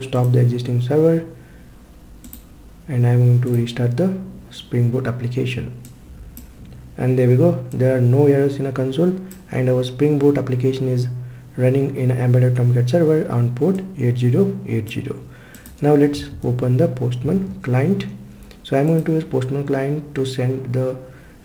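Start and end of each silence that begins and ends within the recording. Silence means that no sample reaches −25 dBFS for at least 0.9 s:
0:01.22–0:02.33

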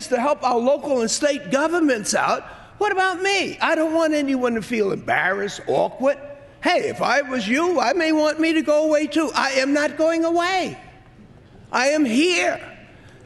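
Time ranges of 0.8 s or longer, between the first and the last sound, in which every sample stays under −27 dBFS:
0:10.73–0:11.72

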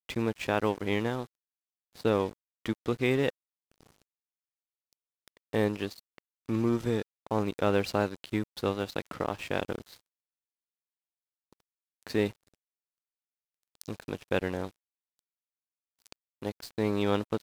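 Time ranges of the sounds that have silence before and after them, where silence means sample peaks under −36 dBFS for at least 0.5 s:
0:02.00–0:03.30
0:05.28–0:09.89
0:12.07–0:12.30
0:13.81–0:14.69

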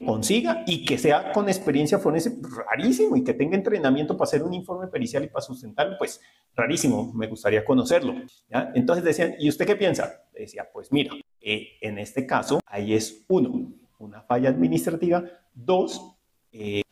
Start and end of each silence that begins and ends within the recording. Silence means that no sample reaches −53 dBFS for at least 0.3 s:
0:16.13–0:16.53

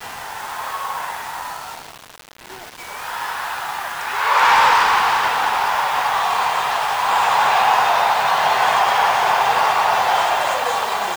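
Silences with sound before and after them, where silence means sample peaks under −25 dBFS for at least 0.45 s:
0:01.78–0:02.52

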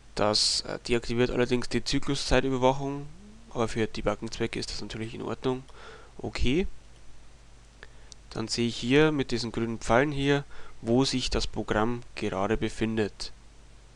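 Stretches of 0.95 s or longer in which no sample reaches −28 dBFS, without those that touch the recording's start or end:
0:06.68–0:07.83

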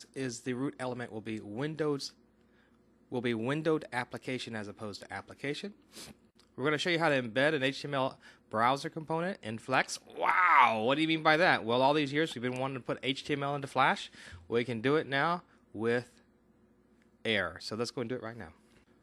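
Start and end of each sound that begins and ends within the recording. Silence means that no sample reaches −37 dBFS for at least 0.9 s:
0:03.12–0:16.02

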